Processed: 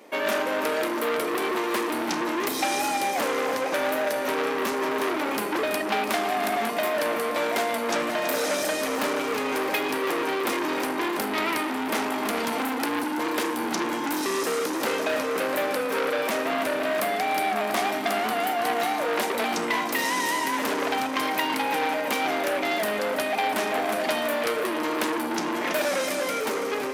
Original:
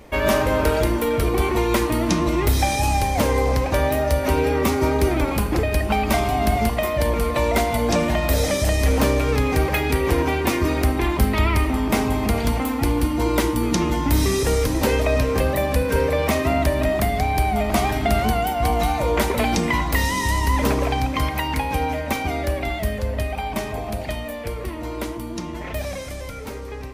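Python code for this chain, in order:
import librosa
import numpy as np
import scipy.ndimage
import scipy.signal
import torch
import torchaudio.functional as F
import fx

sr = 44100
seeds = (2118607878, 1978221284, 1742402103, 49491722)

p1 = scipy.signal.sosfilt(scipy.signal.butter(4, 250.0, 'highpass', fs=sr, output='sos'), x)
p2 = fx.rider(p1, sr, range_db=10, speed_s=0.5)
p3 = p2 + fx.echo_feedback(p2, sr, ms=330, feedback_pct=59, wet_db=-11.5, dry=0)
y = fx.transformer_sat(p3, sr, knee_hz=3400.0)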